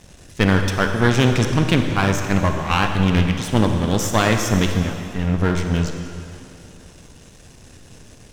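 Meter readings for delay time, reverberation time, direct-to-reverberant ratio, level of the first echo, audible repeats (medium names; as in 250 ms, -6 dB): no echo, 2.7 s, 4.5 dB, no echo, no echo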